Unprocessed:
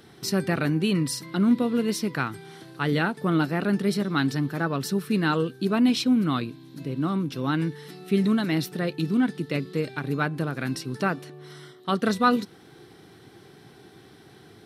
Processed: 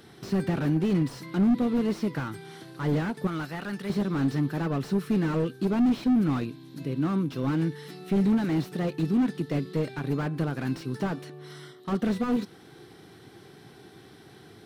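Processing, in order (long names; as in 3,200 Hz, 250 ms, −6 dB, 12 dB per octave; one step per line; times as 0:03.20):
0:03.27–0:03.90: parametric band 270 Hz −11.5 dB 2.8 octaves
slew-rate limiting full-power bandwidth 28 Hz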